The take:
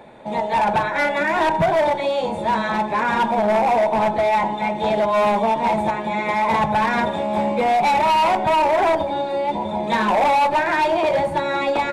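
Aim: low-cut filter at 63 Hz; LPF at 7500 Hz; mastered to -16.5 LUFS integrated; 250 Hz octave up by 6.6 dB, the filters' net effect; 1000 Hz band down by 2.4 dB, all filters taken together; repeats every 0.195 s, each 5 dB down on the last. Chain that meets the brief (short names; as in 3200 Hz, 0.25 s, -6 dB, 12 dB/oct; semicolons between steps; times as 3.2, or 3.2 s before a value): HPF 63 Hz; LPF 7500 Hz; bell 250 Hz +8.5 dB; bell 1000 Hz -3.5 dB; feedback echo 0.195 s, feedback 56%, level -5 dB; gain +1 dB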